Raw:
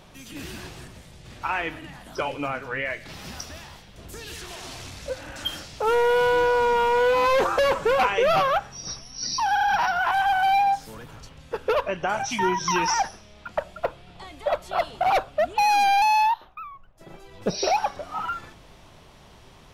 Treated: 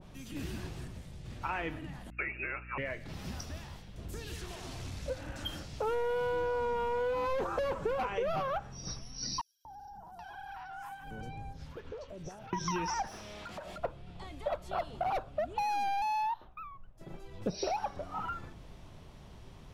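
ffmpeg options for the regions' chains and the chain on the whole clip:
-filter_complex "[0:a]asettb=1/sr,asplit=3[s0][s1][s2];[s0]atrim=end=2.104[s3];[s1]atrim=start=2.1:end=2.78,asetpts=PTS-STARTPTS,afade=t=in:d=0.004:c=qsin,afade=t=out:st=0.676:d=0.004:c=qsin,lowpass=f=2400:t=q:w=0.5098,lowpass=f=2400:t=q:w=0.6013,lowpass=f=2400:t=q:w=0.9,lowpass=f=2400:t=q:w=2.563,afreqshift=-2800,agate=range=0.0224:threshold=0.0224:ratio=3:release=100:detection=peak,aeval=exprs='val(0)+0.00355*(sin(2*PI*60*n/s)+sin(2*PI*2*60*n/s)/2+sin(2*PI*3*60*n/s)/3+sin(2*PI*4*60*n/s)/4+sin(2*PI*5*60*n/s)/5)':c=same[s4];[s2]atrim=start=2.776[s5];[s3][s4]acrossfade=d=0.004:c1=hsin:c2=qsin[s6];[s6][s5]acrossfade=d=0.004:c1=qsin:c2=hsin,asettb=1/sr,asplit=3[s7][s8][s9];[s7]atrim=end=9.414[s10];[s8]atrim=start=9.41:end=12.53,asetpts=PTS-STARTPTS,afade=t=in:d=0.004:c=qsin,afade=t=out:st=3.116:d=0.004:c=qsin,acompressor=threshold=0.0158:ratio=6:attack=3.2:release=140:knee=1:detection=peak,acrossover=split=850|5800[s11][s12][s13];[s11]adelay=240[s14];[s12]adelay=780[s15];[s14][s15][s13]amix=inputs=3:normalize=0,atrim=end_sample=137592[s16];[s9]atrim=start=12.526[s17];[s10][s16]acrossfade=d=0.004:c1=hsin:c2=qsin[s18];[s18][s17]acrossfade=d=0.004:c1=qsin:c2=hsin,asettb=1/sr,asplit=3[s19][s20][s21];[s19]atrim=end=13.074[s22];[s20]atrim=start=13.07:end=13.78,asetpts=PTS-STARTPTS,afade=t=in:d=0.004:c=qsin,afade=t=out:st=0.706:d=0.004:c=qsin,highshelf=f=8000:g=9,acompressor=threshold=0.0112:ratio=6:attack=3.2:release=140:knee=1:detection=peak,asplit=2[s23][s24];[s24]highpass=f=720:p=1,volume=14.1,asoftclip=type=tanh:threshold=0.0376[s25];[s23][s25]amix=inputs=2:normalize=0,lowpass=f=4400:p=1,volume=0.501[s26];[s21]atrim=start=13.776[s27];[s22][s26]acrossfade=d=0.004:c1=hsin:c2=qsin[s28];[s28][s27]acrossfade=d=0.004:c1=qsin:c2=hsin,lowshelf=f=340:g=10,acompressor=threshold=0.0794:ratio=5,adynamicequalizer=threshold=0.00891:dfrequency=1600:dqfactor=0.7:tfrequency=1600:tqfactor=0.7:attack=5:release=100:ratio=0.375:range=2:mode=cutabove:tftype=highshelf,volume=0.398"

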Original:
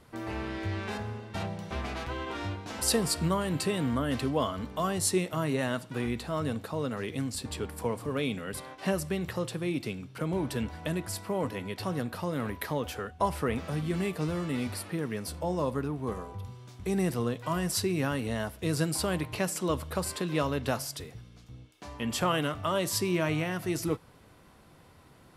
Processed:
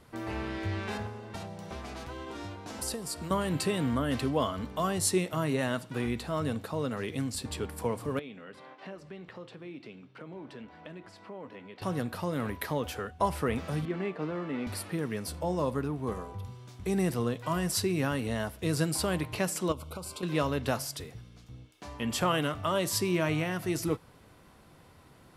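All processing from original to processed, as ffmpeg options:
-filter_complex "[0:a]asettb=1/sr,asplit=3[s0][s1][s2];[s0]atrim=end=1.064[s3];[s1]atrim=start=1.06:end=3.31,asetpts=PTS-STARTPTS,afade=t=in:d=0.004:c=qsin,afade=t=out:st=2.246:d=0.004:c=qsin,equalizer=f=720:w=0.4:g=7,acrossover=split=350|4500[s4][s5][s6];[s4]acompressor=threshold=0.00794:ratio=4[s7];[s5]acompressor=threshold=0.00562:ratio=4[s8];[s6]acompressor=threshold=0.0158:ratio=4[s9];[s7][s8][s9]amix=inputs=3:normalize=0[s10];[s2]atrim=start=3.306[s11];[s3][s10]acrossfade=d=0.004:c1=hsin:c2=qsin[s12];[s12][s11]acrossfade=d=0.004:c1=qsin:c2=hsin,asettb=1/sr,asplit=3[s13][s14][s15];[s13]atrim=end=8.194[s16];[s14]atrim=start=8.19:end=11.82,asetpts=PTS-STARTPTS,afade=t=in:d=0.004:c=qsin,afade=t=out:st=3.626:d=0.004:c=qsin,acompressor=threshold=0.0112:ratio=2:attack=3.2:release=140:knee=1:detection=peak,flanger=delay=4.9:depth=7.3:regen=-85:speed=1.6:shape=sinusoidal,highpass=190,lowpass=3400[s17];[s15]atrim=start=11.816[s18];[s16][s17]acrossfade=d=0.004:c1=hsin:c2=qsin[s19];[s19][s18]acrossfade=d=0.004:c1=qsin:c2=hsin,asettb=1/sr,asplit=3[s20][s21][s22];[s20]atrim=end=13.854[s23];[s21]atrim=start=13.85:end=14.67,asetpts=PTS-STARTPTS,afade=t=in:d=0.004:c=qsin,afade=t=out:st=0.816:d=0.004:c=qsin,acrusher=bits=5:mode=log:mix=0:aa=0.000001,highpass=230,lowpass=2200[s24];[s22]atrim=start=14.666[s25];[s23][s24]acrossfade=d=0.004:c1=hsin:c2=qsin[s26];[s26][s25]acrossfade=d=0.004:c1=qsin:c2=hsin,asettb=1/sr,asplit=3[s27][s28][s29];[s27]atrim=end=19.724[s30];[s28]atrim=start=19.72:end=20.23,asetpts=PTS-STARTPTS,afade=t=in:d=0.004:c=qsin,afade=t=out:st=0.506:d=0.004:c=qsin,agate=range=0.0224:threshold=0.0112:ratio=3:release=100:detection=peak,acompressor=threshold=0.0126:ratio=3:attack=3.2:release=140:knee=1:detection=peak,asuperstop=centerf=1800:order=12:qfactor=3.1[s31];[s29]atrim=start=20.226[s32];[s30][s31]acrossfade=d=0.004:c1=hsin:c2=qsin[s33];[s33][s32]acrossfade=d=0.004:c1=qsin:c2=hsin"

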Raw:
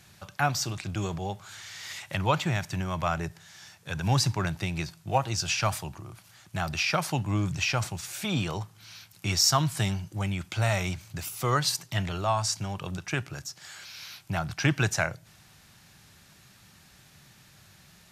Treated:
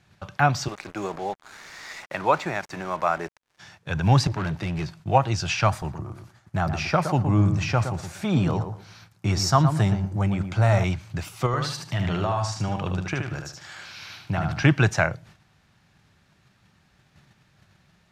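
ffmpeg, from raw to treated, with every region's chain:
-filter_complex "[0:a]asettb=1/sr,asplit=3[s0][s1][s2];[s0]atrim=end=0.684[s3];[s1]atrim=start=0.68:end=3.59,asetpts=PTS-STARTPTS,afade=t=in:d=0.004:c=qsin,afade=t=out:st=2.906:d=0.004:c=qsin,highpass=330,equalizer=f=3100:t=o:w=0.33:g=-13,acrusher=bits=6:mix=0:aa=0.5[s4];[s2]atrim=start=3.586[s5];[s3][s4]acrossfade=d=0.004:c1=hsin:c2=qsin[s6];[s6][s5]acrossfade=d=0.004:c1=qsin:c2=hsin,asettb=1/sr,asplit=3[s7][s8][s9];[s7]atrim=end=4.274[s10];[s8]atrim=start=4.27:end=5,asetpts=PTS-STARTPTS,afade=t=in:d=0.004:c=qsin,afade=t=out:st=0.726:d=0.004:c=qsin,highpass=f=80:w=0.5412,highpass=f=80:w=1.3066,volume=35.5,asoftclip=hard,volume=0.0282[s11];[s9]atrim=start=4.996[s12];[s10][s11]acrossfade=d=0.004:c1=hsin:c2=qsin[s13];[s13][s12]acrossfade=d=0.004:c1=qsin:c2=hsin,asettb=1/sr,asplit=3[s14][s15][s16];[s14]atrim=end=5.704[s17];[s15]atrim=start=5.7:end=10.84,asetpts=PTS-STARTPTS,afade=t=in:d=0.004:c=qsin,afade=t=out:st=5.136:d=0.004:c=qsin,equalizer=f=2900:t=o:w=1.2:g=-7,asplit=2[s18][s19];[s19]adelay=117,lowpass=f=1300:p=1,volume=0.447,asplit=2[s20][s21];[s21]adelay=117,lowpass=f=1300:p=1,volume=0.24,asplit=2[s22][s23];[s23]adelay=117,lowpass=f=1300:p=1,volume=0.24[s24];[s18][s20][s22][s24]amix=inputs=4:normalize=0,atrim=end_sample=226674[s25];[s16]atrim=start=10.836[s26];[s17][s25]acrossfade=d=0.004:c1=hsin:c2=qsin[s27];[s27][s26]acrossfade=d=0.004:c1=qsin:c2=hsin,asettb=1/sr,asplit=3[s28][s29][s30];[s28]atrim=end=11.464[s31];[s29]atrim=start=11.46:end=14.63,asetpts=PTS-STARTPTS,afade=t=in:d=0.004:c=qsin,afade=t=out:st=3.166:d=0.004:c=qsin,acompressor=threshold=0.0447:ratio=10:attack=3.2:release=140:knee=1:detection=peak,aecho=1:1:75|150|225|300:0.562|0.169|0.0506|0.0152,atrim=end_sample=139797[s32];[s30]atrim=start=14.626[s33];[s31][s32]acrossfade=d=0.004:c1=hsin:c2=qsin[s34];[s34][s33]acrossfade=d=0.004:c1=qsin:c2=hsin,agate=range=0.316:threshold=0.00224:ratio=16:detection=peak,aemphasis=mode=reproduction:type=75fm,volume=2"

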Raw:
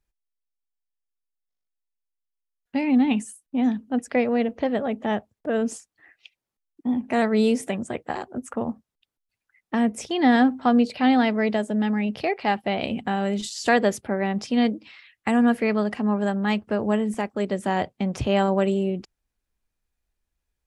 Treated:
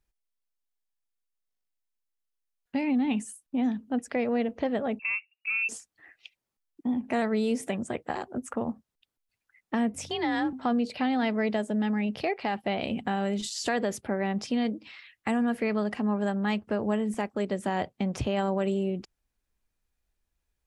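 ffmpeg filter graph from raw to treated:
-filter_complex "[0:a]asettb=1/sr,asplit=3[s0][s1][s2];[s0]atrim=end=4.994[s3];[s1]atrim=start=4.99:end=5.69,asetpts=PTS-STARTPTS,afade=t=in:d=0.004:c=qsin,afade=t=out:st=0.696:d=0.004:c=qsin,equalizer=f=1500:w=0.62:g=-10.5,lowpass=f=2500:t=q:w=0.5098,lowpass=f=2500:t=q:w=0.6013,lowpass=f=2500:t=q:w=0.9,lowpass=f=2500:t=q:w=2.563,afreqshift=-2900[s4];[s2]atrim=start=5.686[s5];[s3][s4]acrossfade=d=0.004:c1=hsin:c2=qsin[s6];[s6][s5]acrossfade=d=0.004:c1=qsin:c2=hsin,asettb=1/sr,asplit=3[s7][s8][s9];[s7]atrim=end=9.944[s10];[s8]atrim=start=9.94:end=10.53,asetpts=PTS-STARTPTS,afade=t=in:d=0.004:c=qsin,afade=t=out:st=0.586:d=0.004:c=qsin,equalizer=f=370:w=0.78:g=-6,aeval=exprs='val(0)+0.00447*(sin(2*PI*50*n/s)+sin(2*PI*2*50*n/s)/2+sin(2*PI*3*50*n/s)/3+sin(2*PI*4*50*n/s)/4+sin(2*PI*5*50*n/s)/5)':c=same,afreqshift=41[s11];[s9]atrim=start=10.526[s12];[s10][s11]acrossfade=d=0.004:c1=hsin:c2=qsin[s13];[s13][s12]acrossfade=d=0.004:c1=qsin:c2=hsin,alimiter=limit=0.2:level=0:latency=1:release=29,acompressor=threshold=0.0251:ratio=1.5"

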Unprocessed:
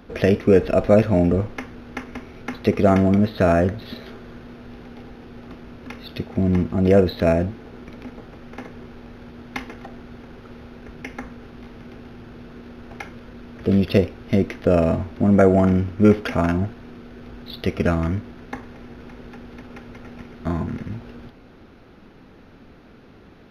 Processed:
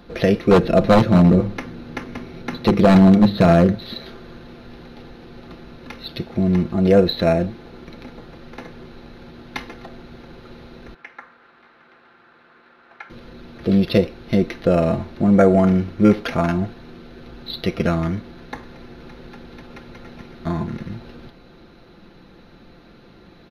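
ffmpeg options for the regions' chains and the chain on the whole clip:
-filter_complex "[0:a]asettb=1/sr,asplit=3[s0][s1][s2];[s0]atrim=end=0.514[s3];[s1]atrim=start=0.51:end=3.76,asetpts=PTS-STARTPTS,afade=t=in:d=0.004:c=qsin,afade=t=out:st=3.246:d=0.004:c=qsin,equalizer=f=170:w=0.56:g=7.5,bandreject=f=50:t=h:w=6,bandreject=f=100:t=h:w=6,bandreject=f=150:t=h:w=6,bandreject=f=200:t=h:w=6,bandreject=f=250:t=h:w=6,bandreject=f=300:t=h:w=6,bandreject=f=350:t=h:w=6,aeval=exprs='0.473*(abs(mod(val(0)/0.473+3,4)-2)-1)':c=same[s4];[s2]atrim=start=3.756[s5];[s3][s4]acrossfade=d=0.004:c1=hsin:c2=qsin[s6];[s6][s5]acrossfade=d=0.004:c1=qsin:c2=hsin,asettb=1/sr,asplit=3[s7][s8][s9];[s7]atrim=end=10.944[s10];[s8]atrim=start=10.94:end=13.1,asetpts=PTS-STARTPTS,afade=t=in:d=0.004:c=qsin,afade=t=out:st=2.156:d=0.004:c=qsin,acrusher=bits=7:mode=log:mix=0:aa=0.000001,bandpass=f=1400:t=q:w=1.6[s11];[s9]atrim=start=13.096[s12];[s10][s11]acrossfade=d=0.004:c1=hsin:c2=qsin[s13];[s13][s12]acrossfade=d=0.004:c1=qsin:c2=hsin,equalizer=f=4000:t=o:w=0.2:g=11,aecho=1:1:5.8:0.4"

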